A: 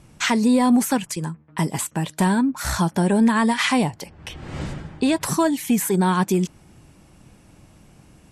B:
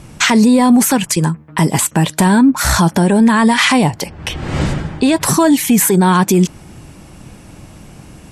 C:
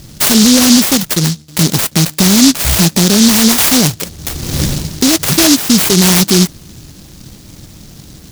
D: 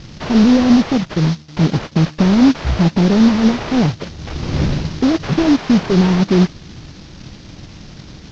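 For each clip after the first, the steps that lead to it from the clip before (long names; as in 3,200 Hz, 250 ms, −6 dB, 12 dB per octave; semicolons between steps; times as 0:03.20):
boost into a limiter +15.5 dB; level −2.5 dB
short delay modulated by noise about 5,000 Hz, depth 0.33 ms; level +2 dB
variable-slope delta modulation 32 kbit/s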